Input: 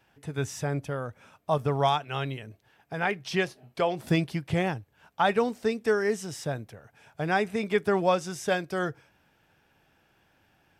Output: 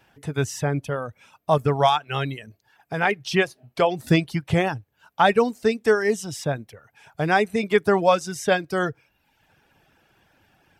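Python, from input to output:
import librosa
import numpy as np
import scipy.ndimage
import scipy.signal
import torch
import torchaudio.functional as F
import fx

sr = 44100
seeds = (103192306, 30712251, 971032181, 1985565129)

y = fx.dereverb_blind(x, sr, rt60_s=0.79)
y = F.gain(torch.from_numpy(y), 6.5).numpy()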